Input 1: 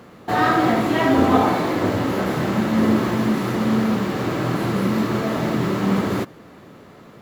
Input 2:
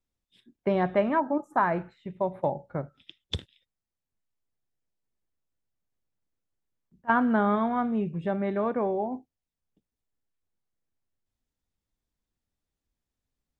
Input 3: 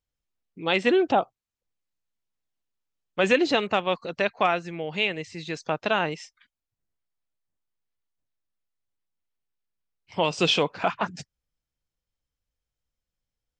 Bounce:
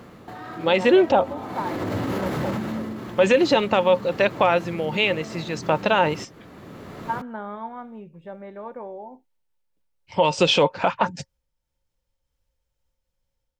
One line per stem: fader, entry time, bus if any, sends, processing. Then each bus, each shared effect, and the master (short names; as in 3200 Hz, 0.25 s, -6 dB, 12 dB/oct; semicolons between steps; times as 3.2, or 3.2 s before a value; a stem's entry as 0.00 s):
-0.5 dB, 0.00 s, no bus, no send, compressor, threshold -27 dBFS, peak gain reduction 15 dB; limiter -26.5 dBFS, peak gain reduction 9 dB; auto duck -10 dB, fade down 0.70 s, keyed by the third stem
-17.0 dB, 0.00 s, bus A, no send, low shelf 270 Hz -8.5 dB
-0.5 dB, 0.00 s, bus A, no send, noise-modulated level, depth 55%
bus A: 0.0 dB, small resonant body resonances 540/900 Hz, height 13 dB, ringing for 85 ms; limiter -15 dBFS, peak gain reduction 7.5 dB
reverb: off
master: low shelf 110 Hz +6 dB; AGC gain up to 8 dB